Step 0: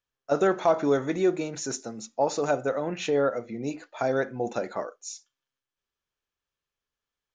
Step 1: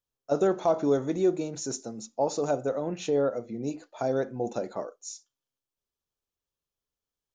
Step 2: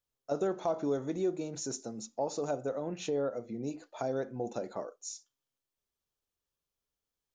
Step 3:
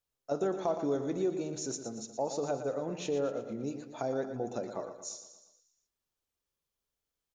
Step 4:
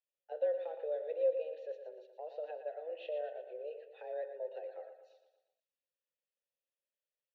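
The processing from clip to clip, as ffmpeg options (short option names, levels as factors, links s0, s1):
-af "equalizer=f=1900:t=o:w=1.6:g=-11"
-af "acompressor=threshold=0.00891:ratio=1.5"
-af "aecho=1:1:117|234|351|468|585|702:0.316|0.164|0.0855|0.0445|0.0231|0.012"
-filter_complex "[0:a]highpass=f=220:t=q:w=0.5412,highpass=f=220:t=q:w=1.307,lowpass=f=3500:t=q:w=0.5176,lowpass=f=3500:t=q:w=0.7071,lowpass=f=3500:t=q:w=1.932,afreqshift=160,asplit=3[s0][s1][s2];[s0]bandpass=f=530:t=q:w=8,volume=1[s3];[s1]bandpass=f=1840:t=q:w=8,volume=0.501[s4];[s2]bandpass=f=2480:t=q:w=8,volume=0.355[s5];[s3][s4][s5]amix=inputs=3:normalize=0,aexciter=amount=2.8:drive=5.2:freq=2900,volume=1.12"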